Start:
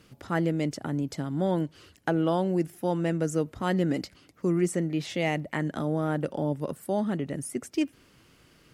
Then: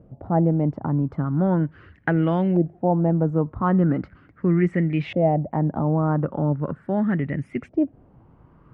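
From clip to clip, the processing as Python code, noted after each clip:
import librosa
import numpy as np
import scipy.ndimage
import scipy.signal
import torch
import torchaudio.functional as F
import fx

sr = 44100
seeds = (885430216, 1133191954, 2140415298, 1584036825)

y = fx.bass_treble(x, sr, bass_db=11, treble_db=-4)
y = fx.filter_lfo_lowpass(y, sr, shape='saw_up', hz=0.39, low_hz=630.0, high_hz=2500.0, q=3.7)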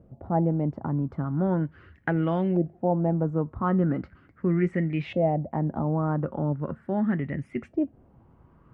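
y = fx.comb_fb(x, sr, f0_hz=75.0, decay_s=0.16, harmonics='odd', damping=0.0, mix_pct=50)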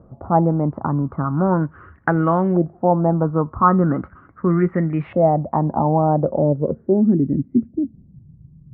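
y = fx.filter_sweep_lowpass(x, sr, from_hz=1200.0, to_hz=150.0, start_s=5.43, end_s=8.26, q=3.5)
y = F.gain(torch.from_numpy(y), 6.0).numpy()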